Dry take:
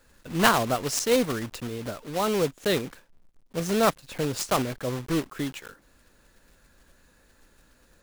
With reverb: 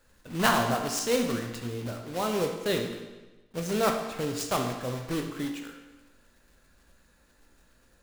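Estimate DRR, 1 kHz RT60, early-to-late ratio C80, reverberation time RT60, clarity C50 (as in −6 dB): 3.0 dB, 1.2 s, 7.5 dB, 1.2 s, 5.5 dB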